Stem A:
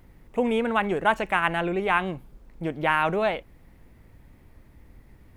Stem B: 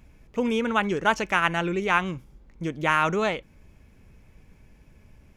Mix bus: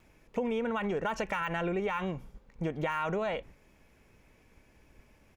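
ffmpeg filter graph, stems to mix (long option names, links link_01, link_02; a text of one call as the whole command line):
ffmpeg -i stem1.wav -i stem2.wav -filter_complex "[0:a]agate=range=-12dB:threshold=-45dB:ratio=16:detection=peak,lowpass=3100,alimiter=limit=-18.5dB:level=0:latency=1,volume=-0.5dB,asplit=2[link_01][link_02];[1:a]deesser=0.6,highpass=320,adelay=2.2,volume=-1.5dB[link_03];[link_02]apad=whole_len=236660[link_04];[link_03][link_04]sidechaincompress=threshold=-34dB:ratio=8:attack=16:release=149[link_05];[link_01][link_05]amix=inputs=2:normalize=0,acompressor=threshold=-28dB:ratio=6" out.wav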